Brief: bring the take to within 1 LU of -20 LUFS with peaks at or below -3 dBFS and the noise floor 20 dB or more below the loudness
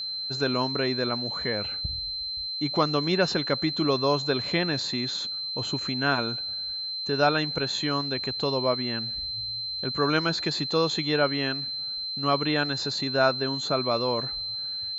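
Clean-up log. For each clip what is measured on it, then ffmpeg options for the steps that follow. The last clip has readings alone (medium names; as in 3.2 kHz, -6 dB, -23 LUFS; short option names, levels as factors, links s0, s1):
steady tone 4.1 kHz; tone level -30 dBFS; loudness -26.0 LUFS; peak level -9.0 dBFS; loudness target -20.0 LUFS
-> -af "bandreject=f=4100:w=30"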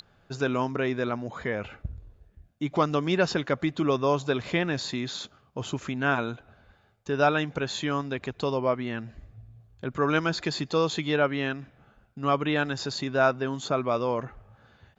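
steady tone not found; loudness -28.0 LUFS; peak level -9.0 dBFS; loudness target -20.0 LUFS
-> -af "volume=2.51,alimiter=limit=0.708:level=0:latency=1"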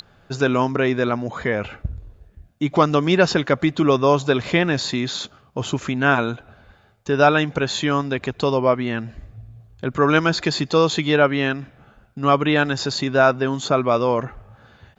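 loudness -20.0 LUFS; peak level -3.0 dBFS; noise floor -55 dBFS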